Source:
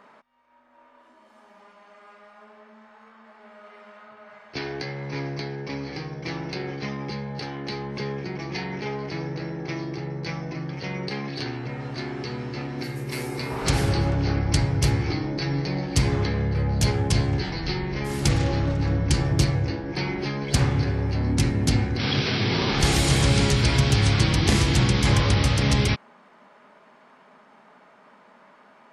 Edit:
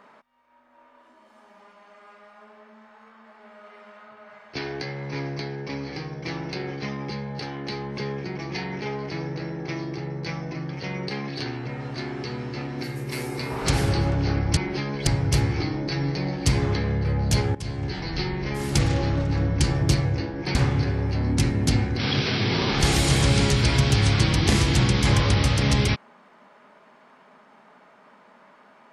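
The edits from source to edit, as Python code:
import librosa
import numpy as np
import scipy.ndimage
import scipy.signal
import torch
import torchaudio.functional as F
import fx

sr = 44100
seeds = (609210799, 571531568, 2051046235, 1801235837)

y = fx.edit(x, sr, fx.fade_in_from(start_s=17.05, length_s=0.57, floor_db=-17.0),
    fx.move(start_s=20.05, length_s=0.5, to_s=14.57), tone=tone)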